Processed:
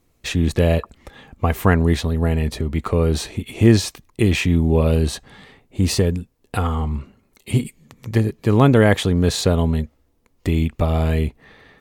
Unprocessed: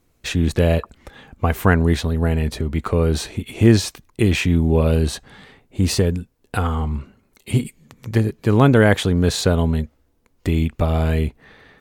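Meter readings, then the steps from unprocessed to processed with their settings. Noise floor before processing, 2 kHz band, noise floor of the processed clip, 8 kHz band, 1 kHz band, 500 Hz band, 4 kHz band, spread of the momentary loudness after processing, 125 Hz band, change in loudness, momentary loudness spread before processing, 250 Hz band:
−63 dBFS, −1.5 dB, −63 dBFS, 0.0 dB, 0.0 dB, 0.0 dB, 0.0 dB, 13 LU, 0.0 dB, 0.0 dB, 13 LU, 0.0 dB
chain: notch filter 1,500 Hz, Q 12

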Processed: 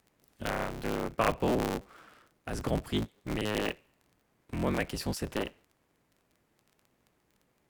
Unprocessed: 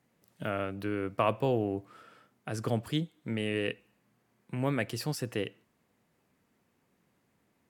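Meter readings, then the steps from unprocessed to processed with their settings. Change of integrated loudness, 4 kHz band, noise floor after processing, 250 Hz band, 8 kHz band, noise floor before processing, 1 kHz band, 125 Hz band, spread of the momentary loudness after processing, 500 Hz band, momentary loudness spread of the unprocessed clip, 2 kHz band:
0.0 dB, +1.5 dB, −74 dBFS, +0.5 dB, +2.5 dB, −74 dBFS, +1.5 dB, −2.0 dB, 11 LU, −0.5 dB, 11 LU, +1.5 dB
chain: sub-harmonics by changed cycles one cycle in 3, inverted
surface crackle 11 per second −47 dBFS

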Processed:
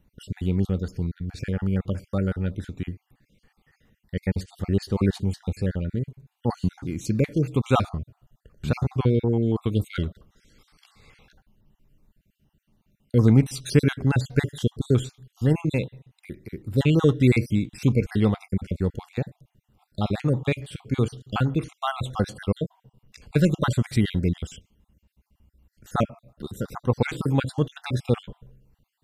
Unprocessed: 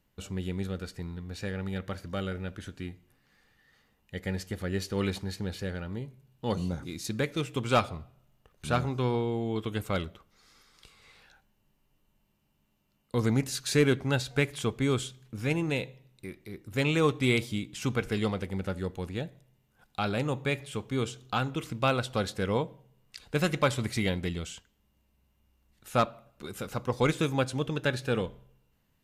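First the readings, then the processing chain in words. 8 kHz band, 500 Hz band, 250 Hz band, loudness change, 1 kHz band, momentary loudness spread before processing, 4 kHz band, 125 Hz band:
−1.5 dB, +3.0 dB, +7.0 dB, +5.5 dB, +0.5 dB, 13 LU, −1.5 dB, +9.0 dB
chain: time-frequency cells dropped at random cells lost 44%
low-shelf EQ 410 Hz +11.5 dB
level +1 dB

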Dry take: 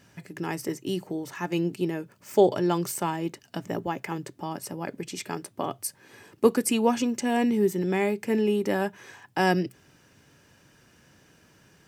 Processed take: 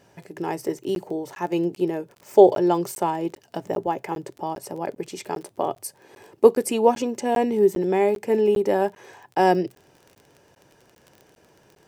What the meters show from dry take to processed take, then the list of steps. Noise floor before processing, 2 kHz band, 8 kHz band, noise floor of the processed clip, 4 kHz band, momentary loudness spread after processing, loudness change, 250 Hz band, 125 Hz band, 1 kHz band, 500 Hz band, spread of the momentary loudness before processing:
−60 dBFS, −2.0 dB, −2.0 dB, −59 dBFS, −2.0 dB, 14 LU, +4.5 dB, +1.0 dB, −2.0 dB, +6.0 dB, +6.5 dB, 13 LU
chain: flat-topped bell 580 Hz +9 dB
surface crackle 28 per second −34 dBFS
regular buffer underruns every 0.40 s, samples 512, zero, from 0:00.95
level −2 dB

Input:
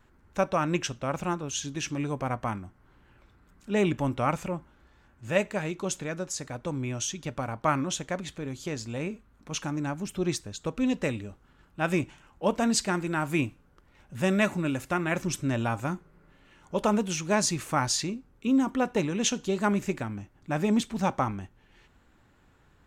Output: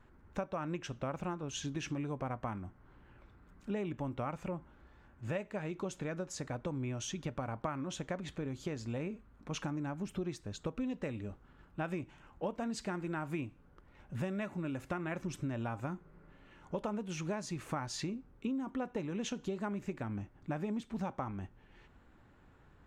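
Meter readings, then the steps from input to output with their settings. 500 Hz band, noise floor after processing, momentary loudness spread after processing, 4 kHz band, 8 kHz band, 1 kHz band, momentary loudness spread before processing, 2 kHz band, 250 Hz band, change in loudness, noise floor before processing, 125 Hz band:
−10.0 dB, −62 dBFS, 5 LU, −12.5 dB, −15.0 dB, −11.5 dB, 11 LU, −12.5 dB, −9.5 dB, −10.5 dB, −62 dBFS, −7.5 dB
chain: high-shelf EQ 3,500 Hz −12 dB
downward compressor 10 to 1, threshold −34 dBFS, peak gain reduction 15 dB

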